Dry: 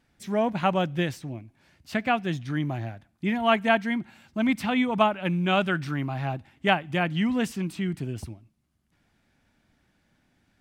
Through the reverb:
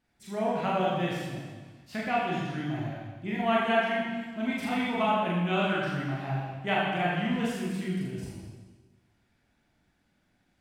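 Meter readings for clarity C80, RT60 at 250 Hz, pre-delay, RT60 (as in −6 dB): 1.0 dB, 1.5 s, 21 ms, 1.4 s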